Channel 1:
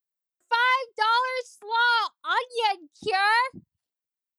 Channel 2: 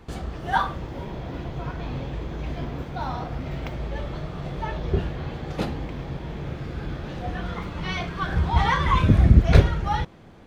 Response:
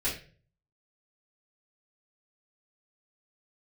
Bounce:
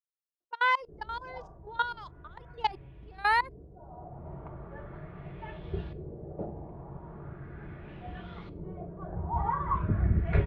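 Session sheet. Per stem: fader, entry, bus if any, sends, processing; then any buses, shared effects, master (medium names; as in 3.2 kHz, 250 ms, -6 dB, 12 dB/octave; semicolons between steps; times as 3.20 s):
0.0 dB, 0.00 s, no send, level-controlled noise filter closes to 1.1 kHz, open at -18.5 dBFS; level held to a coarse grid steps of 21 dB; trance gate "xx..xx..xx.x." 99 bpm -12 dB
-11.5 dB, 0.80 s, send -18.5 dB, comb of notches 260 Hz; LFO low-pass saw up 0.39 Hz 400–4200 Hz; auto duck -20 dB, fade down 1.40 s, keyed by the first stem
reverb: on, RT60 0.40 s, pre-delay 3 ms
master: treble shelf 2.3 kHz -9.5 dB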